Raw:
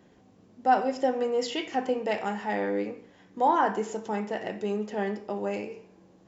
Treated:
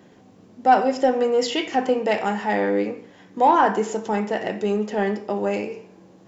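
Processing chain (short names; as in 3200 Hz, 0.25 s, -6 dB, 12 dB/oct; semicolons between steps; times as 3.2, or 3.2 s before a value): HPF 89 Hz; in parallel at -9 dB: soft clip -22 dBFS, distortion -12 dB; on the sum: gain +5 dB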